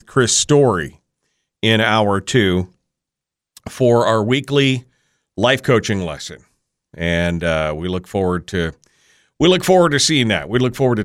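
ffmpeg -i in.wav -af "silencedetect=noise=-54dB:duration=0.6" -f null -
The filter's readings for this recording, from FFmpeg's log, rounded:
silence_start: 2.75
silence_end: 3.56 | silence_duration: 0.82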